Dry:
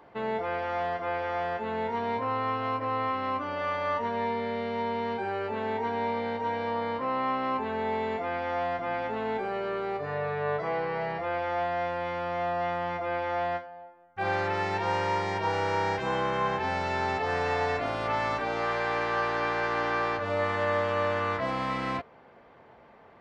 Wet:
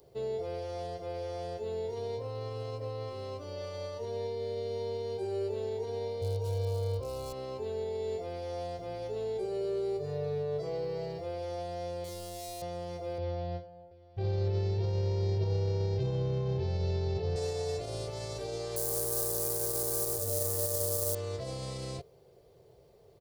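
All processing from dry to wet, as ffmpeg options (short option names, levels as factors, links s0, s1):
-filter_complex "[0:a]asettb=1/sr,asplit=3[s0][s1][s2];[s0]atrim=end=6.214[s3];[s1]atrim=start=6.21:end=7.33,asetpts=PTS-STARTPTS,afade=t=in:d=0.004:c=qsin,afade=t=out:st=1.116:d=0.004:c=qsin,lowshelf=f=120:t=q:w=3:g=8.5,asoftclip=type=hard:threshold=0.0668,asuperstop=centerf=1900:order=4:qfactor=4.6[s4];[s2]atrim=start=7.326[s5];[s3][s4]acrossfade=d=0.004:c1=hsin:c2=qsin[s6];[s6][s5]acrossfade=d=0.004:c1=qsin:c2=hsin,asettb=1/sr,asplit=3[s7][s8][s9];[s7]atrim=end=12.044[s10];[s8]atrim=start=12.04:end=12.62,asetpts=PTS-STARTPTS,afade=t=in:d=0.004:c=qsin,afade=t=out:st=0.576:d=0.004:c=qsin,asplit=2[s11][s12];[s12]adelay=43,volume=0.398[s13];[s11][s13]amix=inputs=2:normalize=0,atrim=end_sample=25578,asoftclip=type=hard:threshold=0.0251[s14];[s9]atrim=start=12.616[s15];[s10][s14]acrossfade=d=0.004:c1=hsin:c2=qsin[s16];[s16][s15]acrossfade=d=0.004:c1=qsin:c2=hsin,asettb=1/sr,asplit=3[s17][s18][s19];[s17]atrim=end=13.184[s20];[s18]atrim=start=13.18:end=17.36,asetpts=PTS-STARTPTS,afade=t=in:d=0.004:c=qsin,afade=t=out:st=4.176:d=0.004:c=qsin,lowpass=f=4600:w=0.5412,lowpass=f=4600:w=1.3066,equalizer=f=120:t=o:w=1.7:g=14,aecho=1:1:730:0.0668,atrim=end_sample=184338[s21];[s19]atrim=start=17.356[s22];[s20][s21]acrossfade=d=0.004:c1=hsin:c2=qsin[s23];[s23][s22]acrossfade=d=0.004:c1=qsin:c2=hsin,asettb=1/sr,asplit=3[s24][s25][s26];[s24]atrim=end=18.764[s27];[s25]atrim=start=18.76:end=21.15,asetpts=PTS-STARTPTS,afade=t=in:d=0.004:c=qsin,afade=t=out:st=2.386:d=0.004:c=qsin,lowpass=f=1700:w=0.5412,lowpass=f=1700:w=1.3066,acrusher=bits=3:mode=log:mix=0:aa=0.000001[s28];[s26]atrim=start=21.146[s29];[s27][s28]acrossfade=d=0.004:c1=hsin:c2=qsin[s30];[s30][s29]acrossfade=d=0.004:c1=qsin:c2=hsin,alimiter=limit=0.075:level=0:latency=1:release=35,firequalizer=gain_entry='entry(140,0);entry(240,-21);entry(390,0);entry(890,-21);entry(1600,-25);entry(4400,2);entry(9700,14)':delay=0.05:min_phase=1,volume=1.33"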